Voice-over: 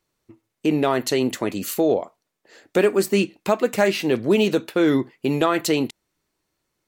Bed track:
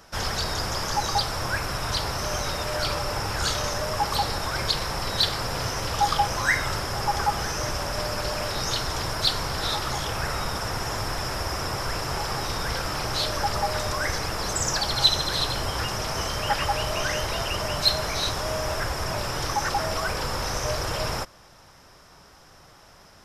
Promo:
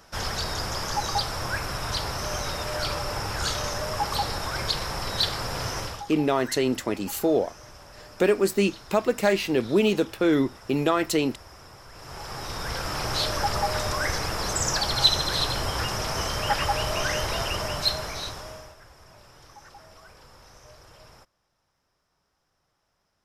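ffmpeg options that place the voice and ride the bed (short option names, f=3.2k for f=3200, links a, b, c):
-filter_complex "[0:a]adelay=5450,volume=-3dB[a];[1:a]volume=16.5dB,afade=t=out:st=5.79:d=0.25:silence=0.149624,afade=t=in:st=11.92:d=1.19:silence=0.11885,afade=t=out:st=17.42:d=1.33:silence=0.0707946[b];[a][b]amix=inputs=2:normalize=0"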